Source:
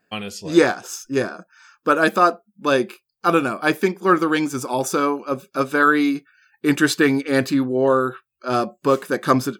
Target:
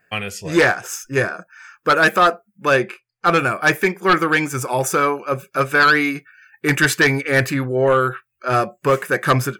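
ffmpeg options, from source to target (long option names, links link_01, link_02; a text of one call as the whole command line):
ffmpeg -i in.wav -filter_complex "[0:a]equalizer=frequency=125:width_type=o:width=1:gain=5,equalizer=frequency=250:width_type=o:width=1:gain=-12,equalizer=frequency=1000:width_type=o:width=1:gain=-4,equalizer=frequency=2000:width_type=o:width=1:gain=8,equalizer=frequency=4000:width_type=o:width=1:gain=-10,aeval=exprs='0.631*sin(PI/2*2*val(0)/0.631)':channel_layout=same,asettb=1/sr,asplit=3[link_01][link_02][link_03];[link_01]atrim=end=2.764[link_04];[link_02]atrim=start=2.76:end=3.39,asetpts=PTS-STARTPTS,afade=type=in:duration=0.004:curve=qsin,afade=type=out:start_time=0.626:duration=0.004:curve=qsin,adynamicsmooth=sensitivity=1:basefreq=6400[link_05];[link_03]atrim=start=3.386[link_06];[link_04][link_05]acrossfade=duration=0.004:curve1=hsin:curve2=qsin[link_07];[link_07][link_06]acrossfade=duration=0.004:curve1=qsin:curve2=hsin,volume=-4dB" out.wav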